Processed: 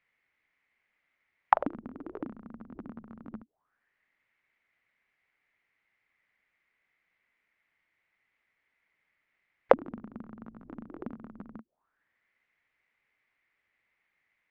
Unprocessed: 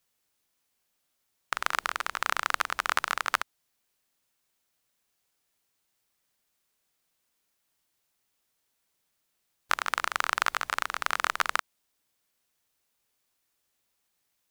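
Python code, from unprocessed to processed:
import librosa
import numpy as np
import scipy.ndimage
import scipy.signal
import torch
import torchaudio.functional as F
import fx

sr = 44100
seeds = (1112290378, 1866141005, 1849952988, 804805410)

y = fx.envelope_lowpass(x, sr, base_hz=220.0, top_hz=2100.0, q=7.4, full_db=-26.5, direction='down')
y = y * librosa.db_to_amplitude(-1.5)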